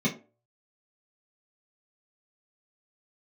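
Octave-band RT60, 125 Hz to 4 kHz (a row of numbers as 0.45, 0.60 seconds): 0.25, 0.35, 0.40, 0.30, 0.25, 0.20 seconds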